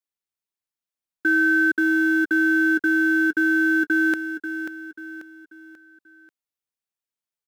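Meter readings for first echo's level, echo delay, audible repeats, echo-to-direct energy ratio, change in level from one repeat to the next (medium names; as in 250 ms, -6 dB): -9.5 dB, 538 ms, 4, -8.5 dB, -7.5 dB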